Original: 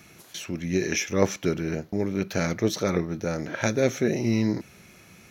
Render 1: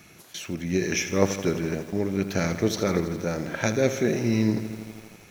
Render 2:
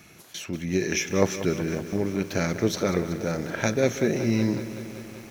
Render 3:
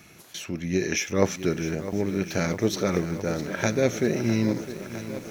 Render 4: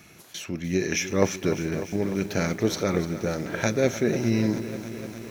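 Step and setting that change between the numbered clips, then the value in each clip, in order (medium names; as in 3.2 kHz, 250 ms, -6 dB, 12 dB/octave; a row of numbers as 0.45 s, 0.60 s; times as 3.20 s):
bit-crushed delay, time: 82 ms, 188 ms, 657 ms, 299 ms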